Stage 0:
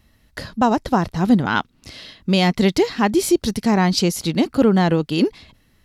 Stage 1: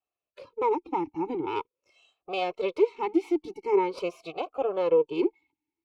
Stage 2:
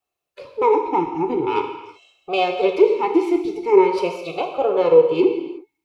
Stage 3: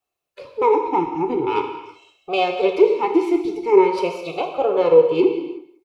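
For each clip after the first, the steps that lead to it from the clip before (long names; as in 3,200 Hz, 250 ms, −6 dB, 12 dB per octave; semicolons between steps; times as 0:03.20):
lower of the sound and its delayed copy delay 2.3 ms; noise reduction from a noise print of the clip's start 16 dB; formant filter swept between two vowels a-u 0.45 Hz; level +1 dB
reverb whose tail is shaped and stops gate 390 ms falling, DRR 3.5 dB; level +7.5 dB
single-tap delay 188 ms −19 dB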